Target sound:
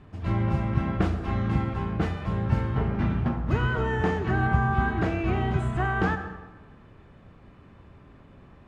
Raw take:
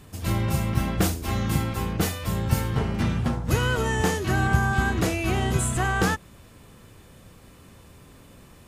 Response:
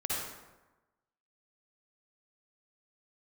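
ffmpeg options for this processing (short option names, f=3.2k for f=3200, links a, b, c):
-filter_complex "[0:a]lowpass=2k,bandreject=f=500:w=12,asplit=2[a][b];[1:a]atrim=start_sample=2205,adelay=45[c];[b][c]afir=irnorm=-1:irlink=0,volume=-15dB[d];[a][d]amix=inputs=2:normalize=0,volume=-1.5dB"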